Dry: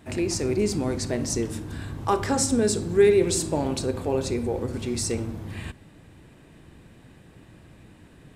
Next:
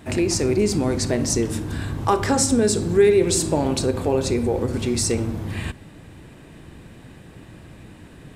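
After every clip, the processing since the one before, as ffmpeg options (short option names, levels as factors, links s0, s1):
-af "acompressor=threshold=0.0447:ratio=1.5,volume=2.24"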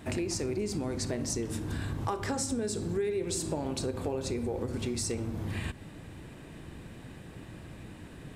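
-af "acompressor=threshold=0.0398:ratio=4,volume=0.708"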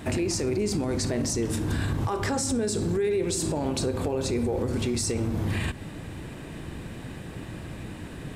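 -af "alimiter=level_in=1.41:limit=0.0631:level=0:latency=1:release=12,volume=0.708,volume=2.51"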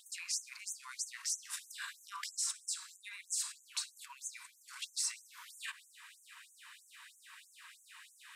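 -af "afftfilt=real='re*gte(b*sr/1024,880*pow(6100/880,0.5+0.5*sin(2*PI*3.1*pts/sr)))':imag='im*gte(b*sr/1024,880*pow(6100/880,0.5+0.5*sin(2*PI*3.1*pts/sr)))':win_size=1024:overlap=0.75,volume=0.562"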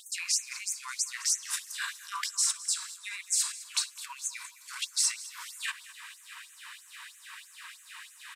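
-af "aecho=1:1:210|420|630|840|1050:0.133|0.072|0.0389|0.021|0.0113,volume=2.82"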